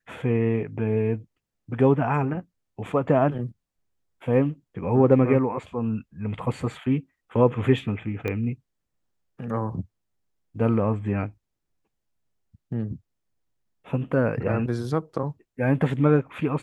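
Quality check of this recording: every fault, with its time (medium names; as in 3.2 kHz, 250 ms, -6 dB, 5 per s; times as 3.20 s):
8.28 s: pop -16 dBFS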